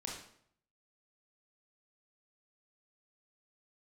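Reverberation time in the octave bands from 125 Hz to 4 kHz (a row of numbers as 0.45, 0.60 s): 0.80, 0.70, 0.65, 0.60, 0.55, 0.50 s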